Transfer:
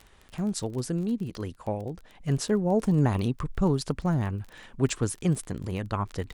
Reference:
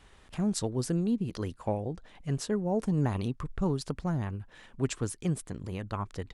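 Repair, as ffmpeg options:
ffmpeg -i in.wav -af "adeclick=threshold=4,asetnsamples=nb_out_samples=441:pad=0,asendcmd='2.21 volume volume -5dB',volume=0dB" out.wav

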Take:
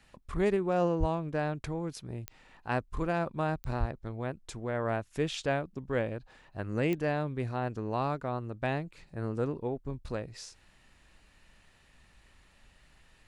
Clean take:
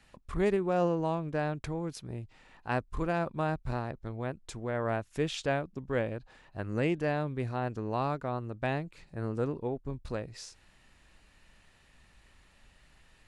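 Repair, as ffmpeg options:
ffmpeg -i in.wav -filter_complex "[0:a]adeclick=threshold=4,asplit=3[link_01][link_02][link_03];[link_01]afade=type=out:start_time=0.99:duration=0.02[link_04];[link_02]highpass=frequency=140:width=0.5412,highpass=frequency=140:width=1.3066,afade=type=in:start_time=0.99:duration=0.02,afade=type=out:start_time=1.11:duration=0.02[link_05];[link_03]afade=type=in:start_time=1.11:duration=0.02[link_06];[link_04][link_05][link_06]amix=inputs=3:normalize=0,asplit=3[link_07][link_08][link_09];[link_07]afade=type=out:start_time=3.79:duration=0.02[link_10];[link_08]highpass=frequency=140:width=0.5412,highpass=frequency=140:width=1.3066,afade=type=in:start_time=3.79:duration=0.02,afade=type=out:start_time=3.91:duration=0.02[link_11];[link_09]afade=type=in:start_time=3.91:duration=0.02[link_12];[link_10][link_11][link_12]amix=inputs=3:normalize=0" out.wav

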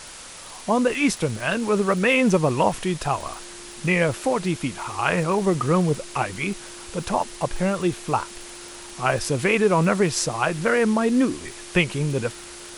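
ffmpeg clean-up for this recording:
ffmpeg -i in.wav -af "adeclick=threshold=4,bandreject=frequency=350:width=30,afwtdn=0.013" out.wav

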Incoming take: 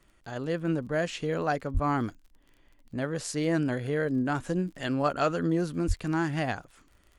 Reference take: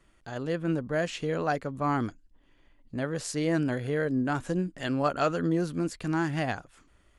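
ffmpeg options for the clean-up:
ffmpeg -i in.wav -filter_complex "[0:a]adeclick=threshold=4,asplit=3[link_01][link_02][link_03];[link_01]afade=type=out:start_time=1.73:duration=0.02[link_04];[link_02]highpass=frequency=140:width=0.5412,highpass=frequency=140:width=1.3066,afade=type=in:start_time=1.73:duration=0.02,afade=type=out:start_time=1.85:duration=0.02[link_05];[link_03]afade=type=in:start_time=1.85:duration=0.02[link_06];[link_04][link_05][link_06]amix=inputs=3:normalize=0,asplit=3[link_07][link_08][link_09];[link_07]afade=type=out:start_time=5.87:duration=0.02[link_10];[link_08]highpass=frequency=140:width=0.5412,highpass=frequency=140:width=1.3066,afade=type=in:start_time=5.87:duration=0.02,afade=type=out:start_time=5.99:duration=0.02[link_11];[link_09]afade=type=in:start_time=5.99:duration=0.02[link_12];[link_10][link_11][link_12]amix=inputs=3:normalize=0" out.wav

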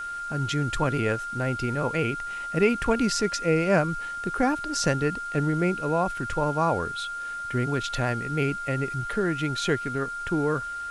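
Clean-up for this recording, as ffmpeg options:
ffmpeg -i in.wav -af "bandreject=frequency=1400:width=30,afwtdn=0.0032" out.wav

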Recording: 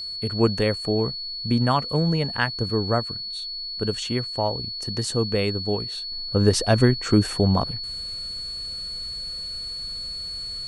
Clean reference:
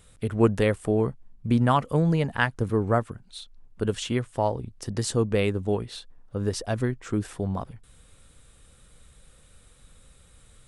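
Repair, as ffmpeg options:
ffmpeg -i in.wav -af "bandreject=frequency=4400:width=30,asetnsamples=nb_out_samples=441:pad=0,asendcmd='6.12 volume volume -9dB',volume=0dB" out.wav

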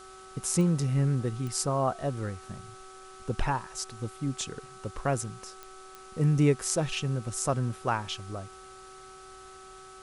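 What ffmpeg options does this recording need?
ffmpeg -i in.wav -af "adeclick=threshold=4,bandreject=frequency=379.2:width_type=h:width=4,bandreject=frequency=758.4:width_type=h:width=4,bandreject=frequency=1137.6:width_type=h:width=4,bandreject=frequency=1516.8:width_type=h:width=4,bandreject=frequency=1300:width=30,afwtdn=0.0022" out.wav

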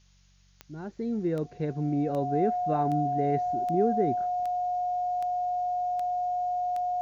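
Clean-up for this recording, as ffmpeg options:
ffmpeg -i in.wav -af "adeclick=threshold=4,bandreject=frequency=47:width_type=h:width=4,bandreject=frequency=94:width_type=h:width=4,bandreject=frequency=141:width_type=h:width=4,bandreject=frequency=188:width_type=h:width=4,bandreject=frequency=720:width=30,agate=range=-21dB:threshold=-51dB" out.wav

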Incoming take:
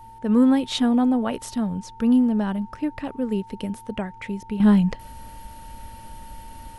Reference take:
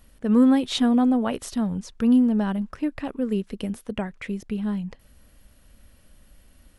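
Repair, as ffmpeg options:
ffmpeg -i in.wav -af "bandreject=frequency=111.1:width_type=h:width=4,bandreject=frequency=222.2:width_type=h:width=4,bandreject=frequency=333.3:width_type=h:width=4,bandreject=frequency=444.4:width_type=h:width=4,bandreject=frequency=900:width=30,agate=range=-21dB:threshold=-35dB,asetnsamples=nb_out_samples=441:pad=0,asendcmd='4.6 volume volume -11.5dB',volume=0dB" out.wav

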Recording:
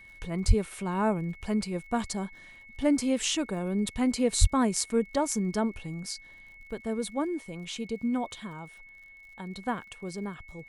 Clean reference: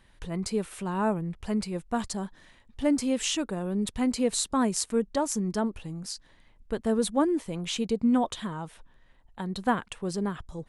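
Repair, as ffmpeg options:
ffmpeg -i in.wav -filter_complex "[0:a]adeclick=threshold=4,bandreject=frequency=2200:width=30,asplit=3[link_01][link_02][link_03];[link_01]afade=type=out:start_time=0.47:duration=0.02[link_04];[link_02]highpass=frequency=140:width=0.5412,highpass=frequency=140:width=1.3066,afade=type=in:start_time=0.47:duration=0.02,afade=type=out:start_time=0.59:duration=0.02[link_05];[link_03]afade=type=in:start_time=0.59:duration=0.02[link_06];[link_04][link_05][link_06]amix=inputs=3:normalize=0,asplit=3[link_07][link_08][link_09];[link_07]afade=type=out:start_time=4.4:duration=0.02[link_10];[link_08]highpass=frequency=140:width=0.5412,highpass=frequency=140:width=1.3066,afade=type=in:start_time=4.4:duration=0.02,afade=type=out:start_time=4.52:duration=0.02[link_11];[link_09]afade=type=in:start_time=4.52:duration=0.02[link_12];[link_10][link_11][link_12]amix=inputs=3:normalize=0,asetnsamples=nb_out_samples=441:pad=0,asendcmd='6.67 volume volume 6dB',volume=0dB" out.wav

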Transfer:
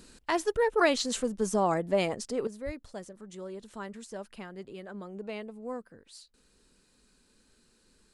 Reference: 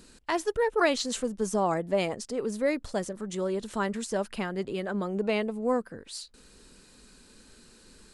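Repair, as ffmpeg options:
ffmpeg -i in.wav -filter_complex "[0:a]asplit=3[link_01][link_02][link_03];[link_01]afade=type=out:start_time=2.65:duration=0.02[link_04];[link_02]highpass=frequency=140:width=0.5412,highpass=frequency=140:width=1.3066,afade=type=in:start_time=2.65:duration=0.02,afade=type=out:start_time=2.77:duration=0.02[link_05];[link_03]afade=type=in:start_time=2.77:duration=0.02[link_06];[link_04][link_05][link_06]amix=inputs=3:normalize=0,asetnsamples=nb_out_samples=441:pad=0,asendcmd='2.47 volume volume 11dB',volume=0dB" out.wav

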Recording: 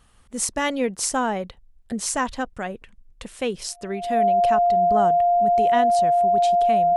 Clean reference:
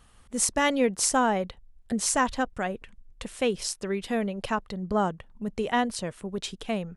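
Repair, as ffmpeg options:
ffmpeg -i in.wav -af "bandreject=frequency=700:width=30" out.wav

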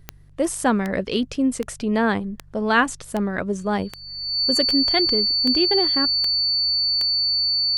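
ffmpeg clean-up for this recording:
ffmpeg -i in.wav -af "adeclick=threshold=4,bandreject=frequency=48.7:width_type=h:width=4,bandreject=frequency=97.4:width_type=h:width=4,bandreject=frequency=146.1:width_type=h:width=4,bandreject=frequency=4500:width=30" out.wav

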